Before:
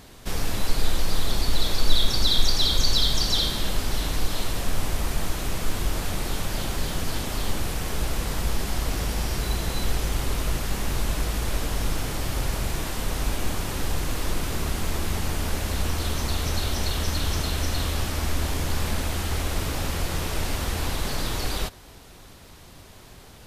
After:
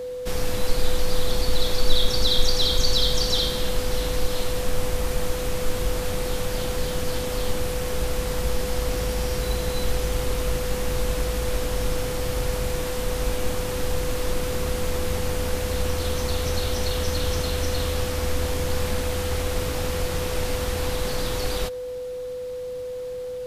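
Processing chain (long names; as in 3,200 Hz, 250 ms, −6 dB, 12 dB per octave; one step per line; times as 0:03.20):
steady tone 500 Hz −29 dBFS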